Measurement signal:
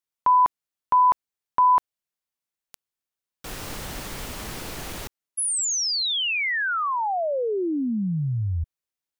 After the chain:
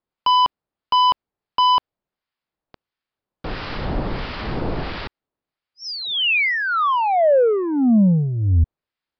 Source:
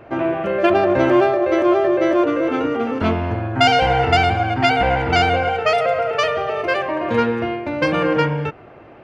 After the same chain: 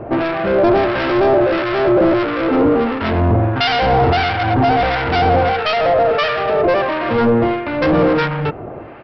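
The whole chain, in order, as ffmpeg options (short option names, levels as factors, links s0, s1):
-filter_complex "[0:a]highshelf=f=2000:g=-11,apsyclip=5.01,aresample=11025,asoftclip=type=tanh:threshold=0.316,aresample=44100,acrossover=split=1100[s0][s1];[s0]aeval=exprs='val(0)*(1-0.7/2+0.7/2*cos(2*PI*1.5*n/s))':c=same[s2];[s1]aeval=exprs='val(0)*(1-0.7/2-0.7/2*cos(2*PI*1.5*n/s))':c=same[s3];[s2][s3]amix=inputs=2:normalize=0,volume=1.12"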